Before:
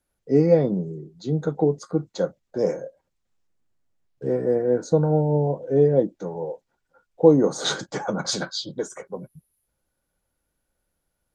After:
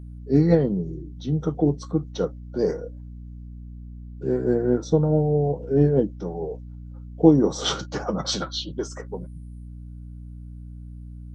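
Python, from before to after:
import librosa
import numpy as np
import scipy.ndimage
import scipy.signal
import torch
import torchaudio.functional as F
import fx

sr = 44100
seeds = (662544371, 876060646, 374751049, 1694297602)

y = fx.add_hum(x, sr, base_hz=60, snr_db=14)
y = fx.formant_shift(y, sr, semitones=-2)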